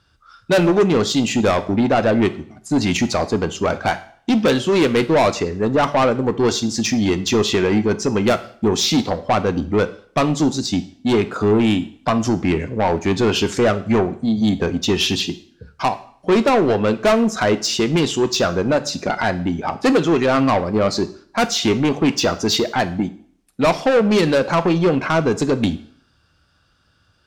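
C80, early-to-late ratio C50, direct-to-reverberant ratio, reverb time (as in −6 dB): 19.0 dB, 15.5 dB, 10.5 dB, 0.55 s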